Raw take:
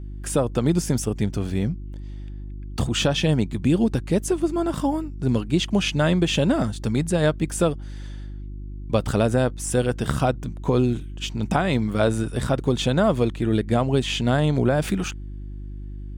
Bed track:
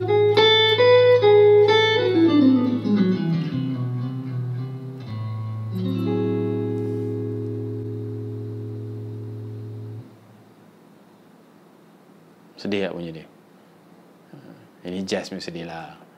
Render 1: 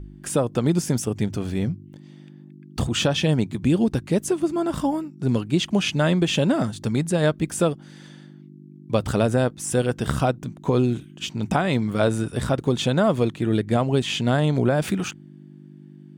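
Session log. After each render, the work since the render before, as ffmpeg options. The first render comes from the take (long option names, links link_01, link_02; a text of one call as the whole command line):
ffmpeg -i in.wav -af "bandreject=frequency=50:width_type=h:width=4,bandreject=frequency=100:width_type=h:width=4" out.wav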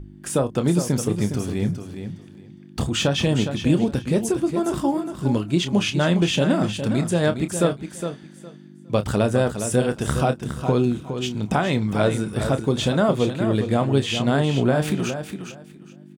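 ffmpeg -i in.wav -filter_complex "[0:a]asplit=2[link_01][link_02];[link_02]adelay=29,volume=-10.5dB[link_03];[link_01][link_03]amix=inputs=2:normalize=0,aecho=1:1:411|822|1233:0.376|0.0714|0.0136" out.wav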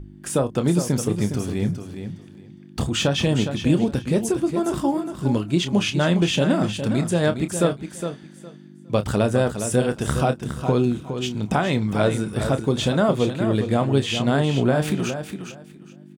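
ffmpeg -i in.wav -af anull out.wav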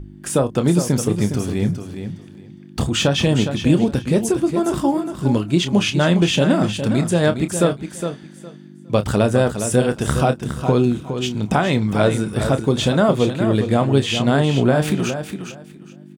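ffmpeg -i in.wav -af "volume=3.5dB,alimiter=limit=-2dB:level=0:latency=1" out.wav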